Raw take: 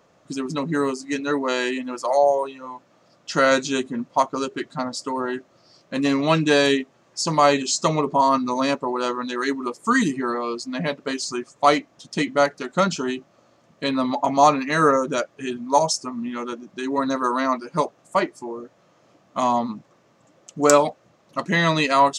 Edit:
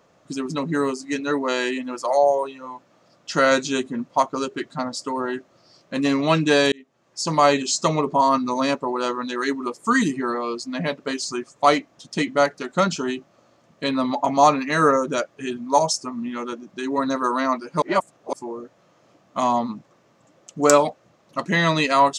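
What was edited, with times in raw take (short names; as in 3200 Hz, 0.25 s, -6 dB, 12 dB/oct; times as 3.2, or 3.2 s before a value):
6.72–7.34 fade in
17.82–18.33 reverse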